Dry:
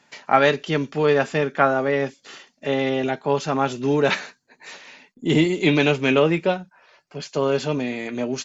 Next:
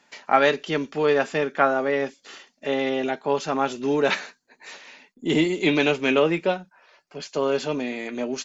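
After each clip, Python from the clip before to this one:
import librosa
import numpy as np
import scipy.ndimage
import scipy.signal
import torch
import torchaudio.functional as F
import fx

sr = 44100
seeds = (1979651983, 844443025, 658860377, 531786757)

y = fx.peak_eq(x, sr, hz=120.0, db=-12.5, octaves=0.73)
y = y * librosa.db_to_amplitude(-1.5)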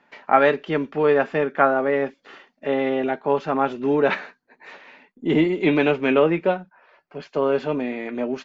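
y = scipy.signal.sosfilt(scipy.signal.butter(2, 2100.0, 'lowpass', fs=sr, output='sos'), x)
y = y * librosa.db_to_amplitude(2.5)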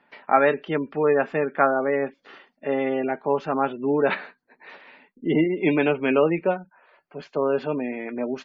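y = fx.spec_gate(x, sr, threshold_db=-30, keep='strong')
y = y * librosa.db_to_amplitude(-2.0)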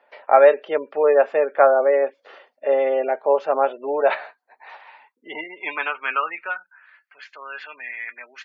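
y = fx.filter_sweep_highpass(x, sr, from_hz=550.0, to_hz=1800.0, start_s=3.63, end_s=7.18, q=3.5)
y = y * librosa.db_to_amplitude(-1.0)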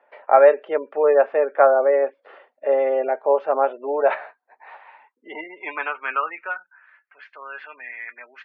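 y = fx.bandpass_edges(x, sr, low_hz=210.0, high_hz=2100.0)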